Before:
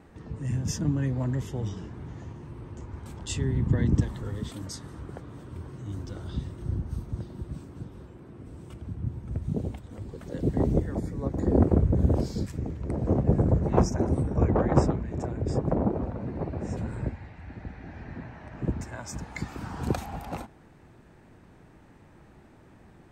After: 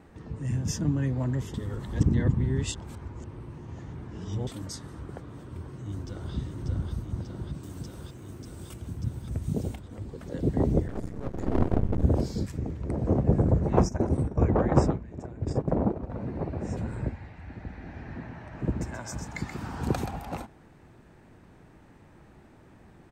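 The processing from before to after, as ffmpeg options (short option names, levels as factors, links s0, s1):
-filter_complex "[0:a]asplit=2[s0][s1];[s1]afade=t=in:st=5.62:d=0.01,afade=t=out:st=6.33:d=0.01,aecho=0:1:590|1180|1770|2360|2950|3540|4130|4720|5310|5900|6490|7080:0.707946|0.530959|0.39822|0.298665|0.223998|0.167999|0.125999|0.0944994|0.0708745|0.0531559|0.0398669|0.0299002[s2];[s0][s2]amix=inputs=2:normalize=0,asettb=1/sr,asplit=3[s3][s4][s5];[s3]atrim=end=7.634[s6];[s4]atrim=start=7.63:end=9.76,asetpts=PTS-STARTPTS,afade=t=in:d=0.004:c=qsin,afade=t=out:st=2.126:d=0.004:c=qsin,aemphasis=mode=production:type=75kf[s7];[s5]atrim=start=9.756[s8];[s6][s7]acrossfade=d=0.004:c1=hsin:c2=qsin[s9];[s9][s8]acrossfade=d=0.004:c1=qsin:c2=hsin,asettb=1/sr,asplit=3[s10][s11][s12];[s10]atrim=end=10.874[s13];[s11]atrim=start=10.87:end=12.03,asetpts=PTS-STARTPTS,afade=t=in:d=0.004:c=qsin,afade=t=out:st=1.156:d=0.004:c=qsin,aeval=exprs='max(val(0),0)':c=same[s14];[s12]atrim=start=12.026[s15];[s13][s14]acrossfade=d=0.004:c1=hsin:c2=qsin[s16];[s16][s15]acrossfade=d=0.004:c1=qsin:c2=hsin,asettb=1/sr,asplit=3[s17][s18][s19];[s17]atrim=end=13.814[s20];[s18]atrim=start=13.81:end=16.1,asetpts=PTS-STARTPTS,afade=t=in:d=0.004:c=qsin,afade=t=out:st=2.286:d=0.004:c=qsin,agate=range=0.355:threshold=0.0355:ratio=16:release=100:detection=peak[s21];[s19]atrim=start=16.096[s22];[s20][s21]acrossfade=d=0.004:c1=hsin:c2=qsin[s23];[s23][s22]acrossfade=d=0.004:c1=qsin:c2=hsin,asettb=1/sr,asplit=3[s24][s25][s26];[s24]atrim=end=17.594[s27];[s25]atrim=start=17.59:end=20.11,asetpts=PTS-STARTPTS,afade=t=in:d=0.004:c=qsin,afade=t=out:st=2.516:d=0.004:c=qsin,aecho=1:1:129:0.447,atrim=end_sample=111132[s28];[s26]atrim=start=20.106[s29];[s27][s28]acrossfade=d=0.004:c1=hsin:c2=qsin[s30];[s30][s29]acrossfade=d=0.004:c1=qsin:c2=hsin,asplit=3[s31][s32][s33];[s31]atrim=end=1.542[s34];[s32]atrim=start=1.538:end=4.472,asetpts=PTS-STARTPTS,areverse[s35];[s33]atrim=start=4.468[s36];[s34][s35]acrossfade=d=0.004:c1=hsin:c2=hsin[s37];[s37][s36]acrossfade=d=0.004:c1=hsin:c2=hsin"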